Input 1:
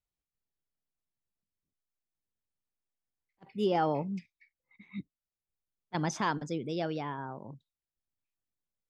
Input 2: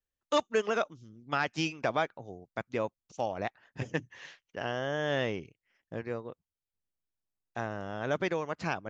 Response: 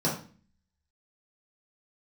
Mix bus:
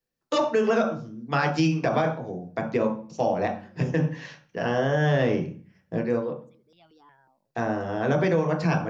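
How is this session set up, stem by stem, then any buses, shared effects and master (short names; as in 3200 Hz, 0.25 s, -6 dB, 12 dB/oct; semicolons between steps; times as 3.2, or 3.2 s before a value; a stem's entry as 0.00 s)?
-16.0 dB, 0.00 s, no send, tilt shelf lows -5.5 dB, about 740 Hz; step phaser 5.5 Hz 410–1700 Hz; auto duck -12 dB, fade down 0.40 s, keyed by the second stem
+2.0 dB, 0.00 s, send -8 dB, dry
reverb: on, RT60 0.40 s, pre-delay 3 ms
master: limiter -13.5 dBFS, peak gain reduction 8 dB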